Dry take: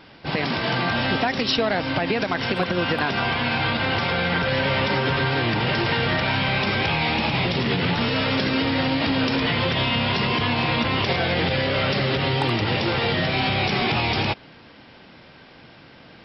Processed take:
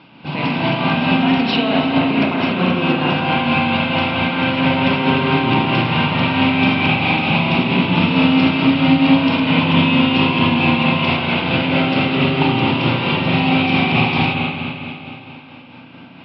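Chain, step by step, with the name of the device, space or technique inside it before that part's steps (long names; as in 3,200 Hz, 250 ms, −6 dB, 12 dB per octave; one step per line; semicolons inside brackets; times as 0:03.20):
combo amplifier with spring reverb and tremolo (spring reverb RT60 2.9 s, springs 33/42 ms, chirp 45 ms, DRR −3.5 dB; amplitude tremolo 4.5 Hz, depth 36%; loudspeaker in its box 93–4,200 Hz, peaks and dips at 160 Hz +9 dB, 260 Hz +9 dB, 440 Hz −5 dB, 960 Hz +5 dB, 1,800 Hz −9 dB, 2,600 Hz +8 dB)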